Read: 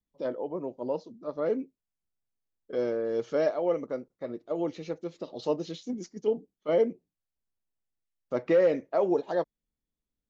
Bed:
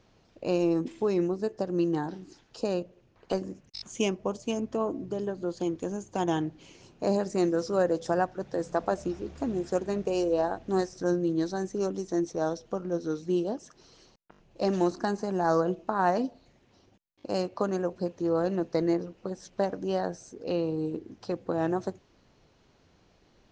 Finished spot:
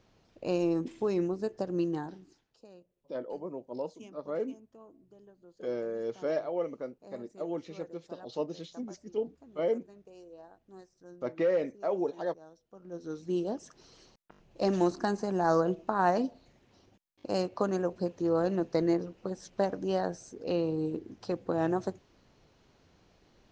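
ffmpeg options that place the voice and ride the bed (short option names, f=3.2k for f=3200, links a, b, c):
-filter_complex "[0:a]adelay=2900,volume=-5dB[a];[1:a]volume=20.5dB,afade=t=out:st=1.76:d=0.84:silence=0.0841395,afade=t=in:st=12.71:d=0.92:silence=0.0668344[b];[a][b]amix=inputs=2:normalize=0"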